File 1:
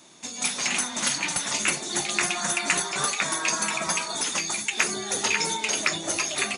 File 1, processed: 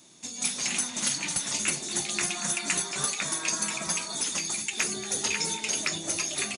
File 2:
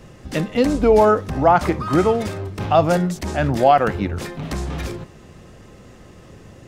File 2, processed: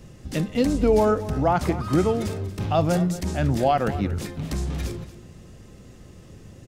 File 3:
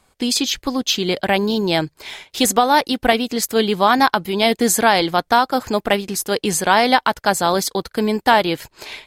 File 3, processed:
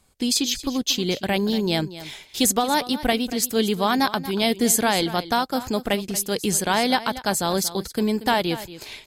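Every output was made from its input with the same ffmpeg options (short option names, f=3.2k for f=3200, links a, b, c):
-af "equalizer=f=1.1k:w=0.36:g=-8.5,aecho=1:1:233:0.178"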